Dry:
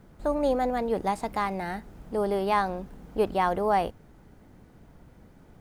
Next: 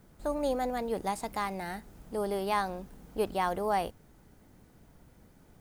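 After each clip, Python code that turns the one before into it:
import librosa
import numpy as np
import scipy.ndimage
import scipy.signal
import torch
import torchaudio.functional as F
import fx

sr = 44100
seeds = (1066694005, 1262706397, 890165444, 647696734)

y = fx.high_shelf(x, sr, hz=4500.0, db=11.0)
y = F.gain(torch.from_numpy(y), -5.5).numpy()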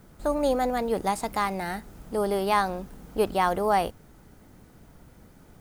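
y = fx.peak_eq(x, sr, hz=1300.0, db=3.0, octaves=0.24)
y = F.gain(torch.from_numpy(y), 6.0).numpy()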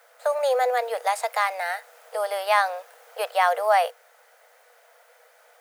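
y = scipy.signal.sosfilt(scipy.signal.cheby1(6, 6, 470.0, 'highpass', fs=sr, output='sos'), x)
y = F.gain(torch.from_numpy(y), 7.5).numpy()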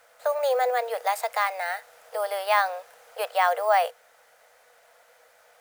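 y = np.repeat(x[::2], 2)[:len(x)]
y = F.gain(torch.from_numpy(y), -1.5).numpy()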